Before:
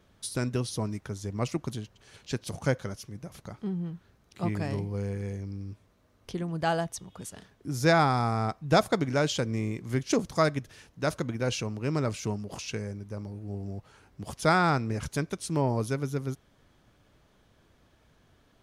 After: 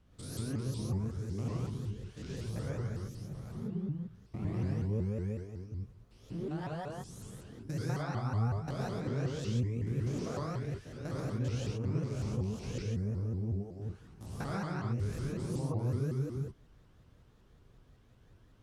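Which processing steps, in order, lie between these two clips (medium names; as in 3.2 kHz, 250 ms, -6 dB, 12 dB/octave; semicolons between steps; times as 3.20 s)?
spectrogram pixelated in time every 200 ms; compression 4:1, threshold -34 dBFS, peak gain reduction 12 dB; bass shelf 240 Hz +11.5 dB; gated-style reverb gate 150 ms rising, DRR -3 dB; vibrato with a chosen wave saw up 5.4 Hz, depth 250 cents; trim -9 dB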